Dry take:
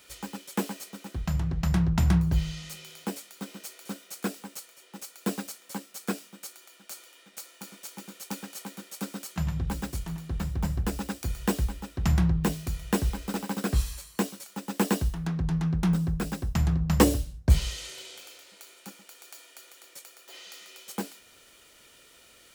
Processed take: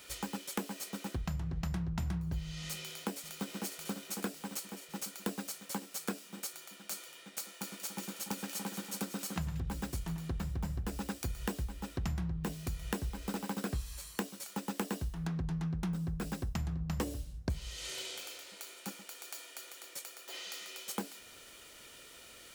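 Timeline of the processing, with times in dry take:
2.68–3.63 echo throw 0.55 s, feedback 70%, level -9.5 dB
7.52–9.6 split-band echo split 1800 Hz, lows 0.289 s, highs 0.182 s, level -10 dB
whole clip: compressor 6:1, threshold -36 dBFS; gain +2 dB

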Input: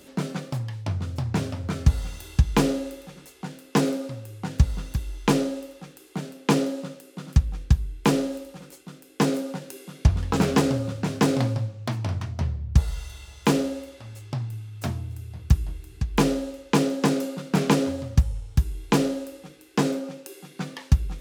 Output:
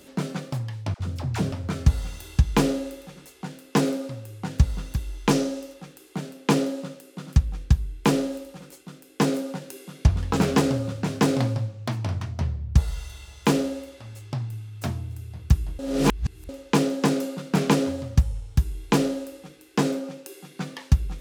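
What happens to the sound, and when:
0.94–1.52 dispersion lows, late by 62 ms, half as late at 580 Hz
5.31–5.74 bell 5800 Hz +6 dB 0.59 oct
15.79–16.49 reverse

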